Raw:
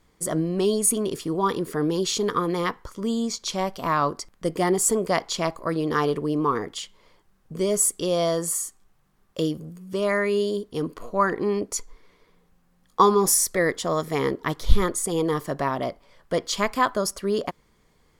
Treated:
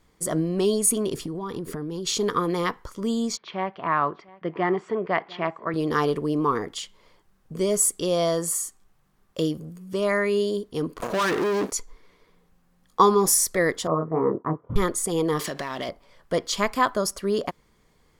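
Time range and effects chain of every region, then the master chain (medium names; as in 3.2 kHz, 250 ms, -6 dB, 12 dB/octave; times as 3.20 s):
1.14–2.07 s: bass shelf 260 Hz +9.5 dB + compression 16:1, threshold -27 dBFS
3.37–5.74 s: cabinet simulation 170–2700 Hz, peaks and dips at 250 Hz -9 dB, 520 Hz -6 dB, 1.8 kHz +3 dB + delay 699 ms -22 dB
11.00–11.72 s: compression 5:1, threshold -26 dBFS + waveshaping leveller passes 5 + high-pass 190 Hz 6 dB/octave
13.87–14.76 s: elliptic band-pass 110–1200 Hz, stop band 50 dB + expander -37 dBFS + doubling 25 ms -3.5 dB
15.39–15.89 s: frequency weighting D + compression 8:1, threshold -33 dBFS + waveshaping leveller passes 2
whole clip: none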